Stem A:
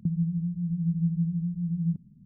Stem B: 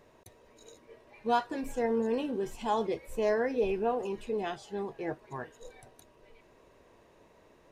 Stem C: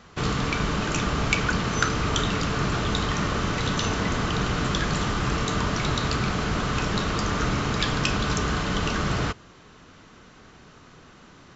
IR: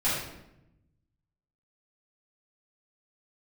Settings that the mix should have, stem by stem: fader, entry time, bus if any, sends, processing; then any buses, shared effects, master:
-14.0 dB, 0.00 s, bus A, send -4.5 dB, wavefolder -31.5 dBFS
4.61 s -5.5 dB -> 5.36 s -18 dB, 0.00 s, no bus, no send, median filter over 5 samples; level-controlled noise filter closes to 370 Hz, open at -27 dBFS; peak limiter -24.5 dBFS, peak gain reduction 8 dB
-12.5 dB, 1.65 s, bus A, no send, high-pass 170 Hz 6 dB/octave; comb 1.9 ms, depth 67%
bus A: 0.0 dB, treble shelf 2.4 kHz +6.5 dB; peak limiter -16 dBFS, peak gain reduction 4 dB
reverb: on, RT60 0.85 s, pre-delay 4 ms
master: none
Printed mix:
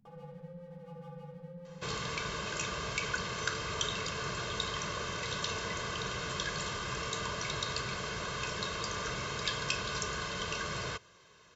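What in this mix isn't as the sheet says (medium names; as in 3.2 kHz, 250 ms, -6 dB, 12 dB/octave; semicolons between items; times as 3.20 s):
stem A -14.0 dB -> -21.0 dB; stem B: muted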